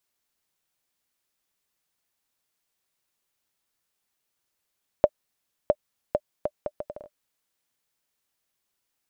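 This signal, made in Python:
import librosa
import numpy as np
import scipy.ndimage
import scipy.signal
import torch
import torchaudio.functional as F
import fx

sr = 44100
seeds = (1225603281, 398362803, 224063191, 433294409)

y = fx.bouncing_ball(sr, first_gap_s=0.66, ratio=0.68, hz=597.0, decay_ms=51.0, level_db=-4.5)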